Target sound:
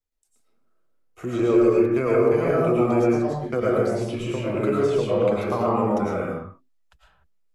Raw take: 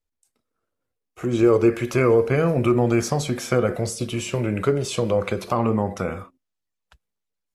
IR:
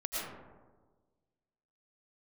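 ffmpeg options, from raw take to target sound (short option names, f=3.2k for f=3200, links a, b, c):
-filter_complex "[0:a]asettb=1/sr,asplit=3[a][b][c];[a]atrim=end=1.744[d];[b]atrim=start=1.74:end=3.57,asetpts=PTS-STARTPTS,afade=t=in:d=0.004:c=qsin,afade=t=out:st=1.826:d=0.004:c=qsin,agate=range=-32dB:threshold=-21dB:ratio=16:detection=peak[e];[c]atrim=start=3.566[f];[d][e]acrossfade=d=0.004:c1=hsin:c2=qsin[g];[g][f]acrossfade=d=0.004:c1=qsin:c2=hsin[h];[1:a]atrim=start_sample=2205,afade=t=out:st=0.36:d=0.01,atrim=end_sample=16317[i];[h][i]afir=irnorm=-1:irlink=0,acrossover=split=220|1500|3600[j][k][l][m];[j]acompressor=threshold=-30dB:ratio=4[n];[k]acompressor=threshold=-13dB:ratio=4[o];[l]acompressor=threshold=-40dB:ratio=4[p];[m]acompressor=threshold=-49dB:ratio=4[q];[n][o][p][q]amix=inputs=4:normalize=0,volume=-2dB"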